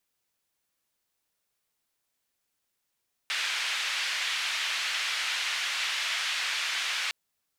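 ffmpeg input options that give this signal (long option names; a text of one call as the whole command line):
ffmpeg -f lavfi -i "anoisesrc=color=white:duration=3.81:sample_rate=44100:seed=1,highpass=frequency=2000,lowpass=frequency=2800,volume=-12.9dB" out.wav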